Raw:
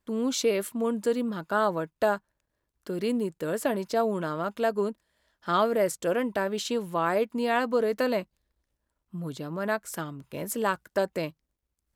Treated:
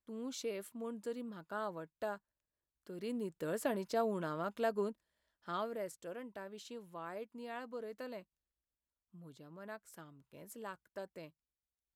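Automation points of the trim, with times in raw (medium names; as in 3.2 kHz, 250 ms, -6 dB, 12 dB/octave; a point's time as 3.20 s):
2.91 s -15.5 dB
3.42 s -8.5 dB
4.80 s -8.5 dB
6.12 s -19.5 dB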